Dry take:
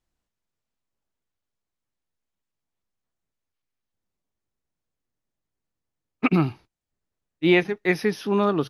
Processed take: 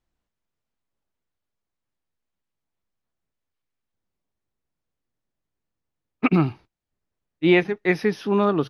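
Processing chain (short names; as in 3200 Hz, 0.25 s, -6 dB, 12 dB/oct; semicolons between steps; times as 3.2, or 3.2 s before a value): LPF 3800 Hz 6 dB/oct; gain +1.5 dB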